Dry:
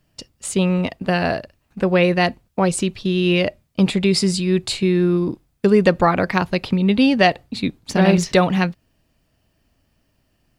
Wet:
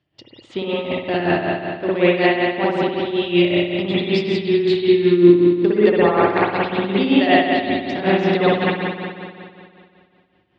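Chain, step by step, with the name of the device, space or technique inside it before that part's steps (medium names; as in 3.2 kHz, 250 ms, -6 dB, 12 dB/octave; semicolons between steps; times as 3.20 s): combo amplifier with spring reverb and tremolo (spring tank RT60 2.3 s, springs 57 ms, chirp 45 ms, DRR -8.5 dB; tremolo 5.3 Hz, depth 62%; cabinet simulation 80–4600 Hz, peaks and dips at 110 Hz +5 dB, 190 Hz -5 dB, 340 Hz +10 dB, 780 Hz +5 dB, 2 kHz +5 dB, 3.4 kHz +9 dB); trim -8 dB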